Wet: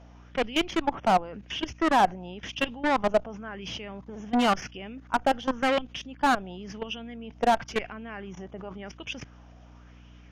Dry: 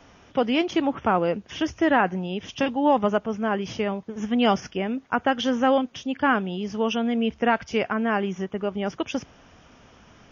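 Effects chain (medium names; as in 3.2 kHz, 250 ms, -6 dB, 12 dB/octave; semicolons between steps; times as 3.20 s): level held to a coarse grid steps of 21 dB; Chebyshev shaper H 4 -21 dB, 6 -14 dB, 7 -33 dB, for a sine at -9 dBFS; hum 60 Hz, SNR 25 dB; valve stage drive 24 dB, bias 0.35; sweeping bell 0.94 Hz 650–3000 Hz +9 dB; trim +4.5 dB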